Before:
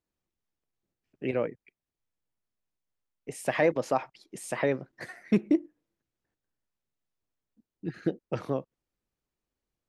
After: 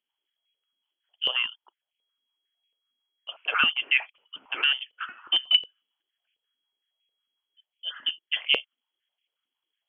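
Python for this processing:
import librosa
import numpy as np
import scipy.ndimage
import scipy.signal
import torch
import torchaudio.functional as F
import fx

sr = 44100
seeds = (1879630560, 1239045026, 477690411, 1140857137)

y = 10.0 ** (-14.0 / 20.0) * np.tanh(x / 10.0 ** (-14.0 / 20.0))
y = fx.freq_invert(y, sr, carrier_hz=3300)
y = fx.filter_held_highpass(y, sr, hz=11.0, low_hz=250.0, high_hz=2400.0)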